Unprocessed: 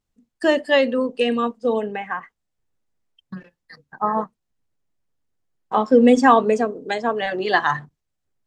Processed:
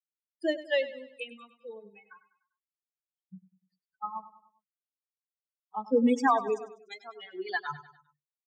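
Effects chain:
spectral dynamics exaggerated over time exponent 3
Chebyshev high-pass filter 200 Hz, order 2
repeating echo 99 ms, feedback 46%, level −15 dB
level −6.5 dB

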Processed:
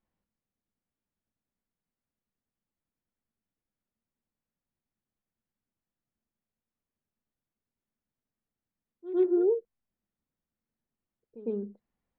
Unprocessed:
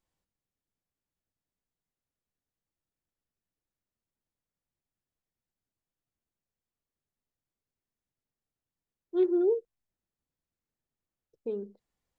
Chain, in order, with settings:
low-pass filter 2,300 Hz 12 dB per octave
parametric band 220 Hz +8.5 dB 0.42 octaves
echo ahead of the sound 105 ms −14.5 dB

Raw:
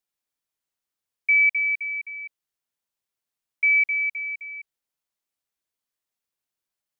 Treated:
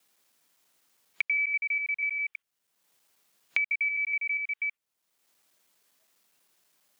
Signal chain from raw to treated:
slices reordered back to front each 81 ms, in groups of 2
in parallel at +0.5 dB: downward compressor, threshold −30 dBFS, peak gain reduction 13 dB
on the sum: noise reduction from a noise print of the clip's start 10 dB
multiband upward and downward compressor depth 100%
level −8.5 dB

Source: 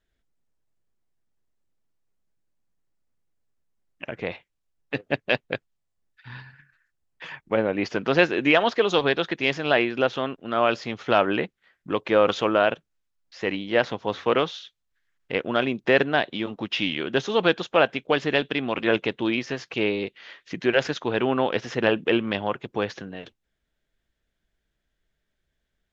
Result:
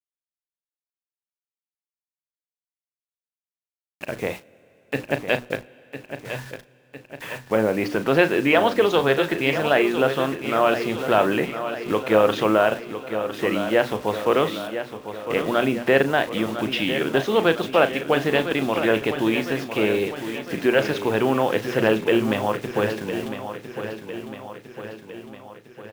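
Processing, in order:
high-shelf EQ 3,400 Hz −9 dB
mains-hum notches 60/120/180/240/300 Hz
in parallel at −2.5 dB: brickwall limiter −17.5 dBFS, peak gain reduction 11.5 dB
on the sum: bit reduction 7 bits
double-tracking delay 37 ms −12 dB
repeating echo 1,005 ms, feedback 56%, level −10 dB
on a send at −23 dB: convolution reverb RT60 5.0 s, pre-delay 24 ms

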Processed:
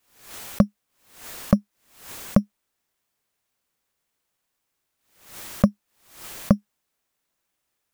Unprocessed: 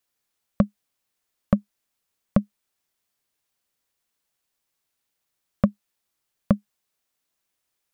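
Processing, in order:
in parallel at −10 dB: decimation without filtering 8×
on the sum: background raised ahead of every attack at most 100 dB per second

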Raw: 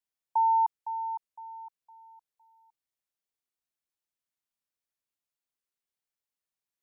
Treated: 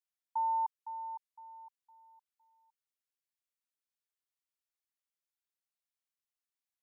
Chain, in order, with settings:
high-pass filter 890 Hz
level −5 dB

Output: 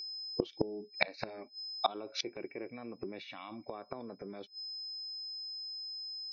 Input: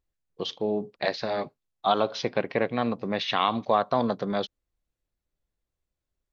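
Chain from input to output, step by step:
noise reduction from a noise print of the clip's start 26 dB
in parallel at 0 dB: compressor whose output falls as the input rises −31 dBFS, ratio −1
on the sum: steady tone 5,100 Hz −40 dBFS
hollow resonant body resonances 350/2,300 Hz, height 17 dB, ringing for 40 ms
gate with flip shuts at −14 dBFS, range −27 dB

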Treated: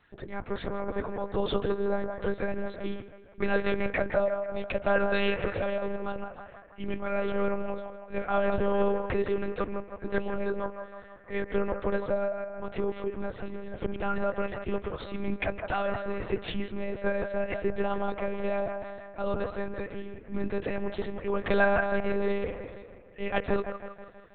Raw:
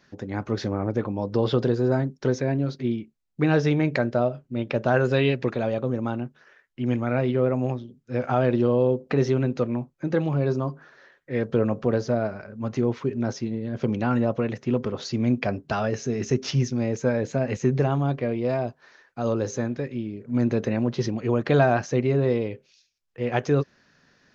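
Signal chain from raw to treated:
low-shelf EQ 340 Hz −10 dB
delay with a band-pass on its return 162 ms, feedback 55%, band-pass 980 Hz, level −5 dB
one-pitch LPC vocoder at 8 kHz 200 Hz
level −1 dB

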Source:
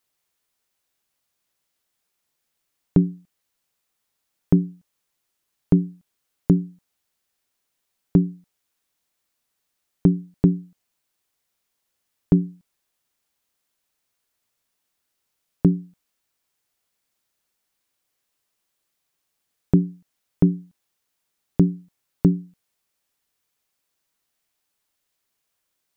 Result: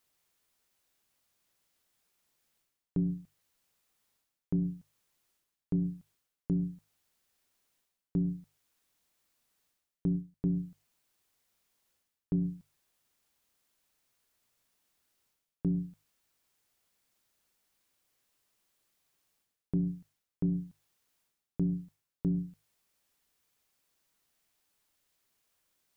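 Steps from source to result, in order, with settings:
low-shelf EQ 220 Hz +4 dB
mains-hum notches 50/100/150 Hz
reversed playback
downward compressor 4 to 1, threshold −31 dBFS, peak gain reduction 18.5 dB
reversed playback

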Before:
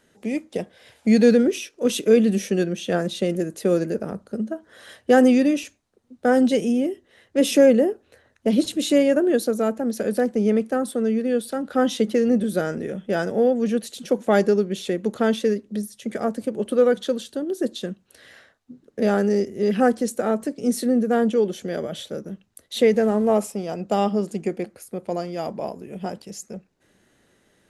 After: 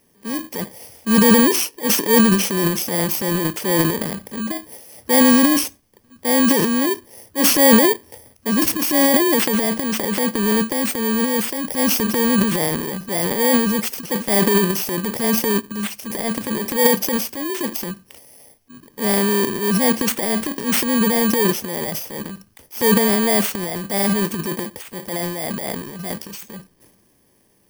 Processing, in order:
samples in bit-reversed order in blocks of 32 samples
transient designer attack −6 dB, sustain +11 dB
level +2 dB

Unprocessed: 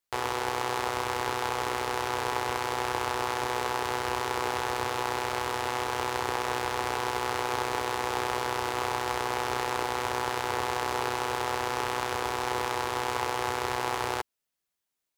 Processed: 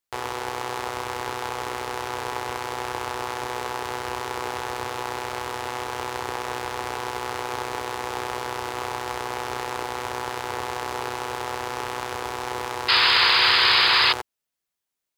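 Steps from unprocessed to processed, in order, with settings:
sound drawn into the spectrogram noise, 0:12.88–0:14.13, 900–5,100 Hz −18 dBFS

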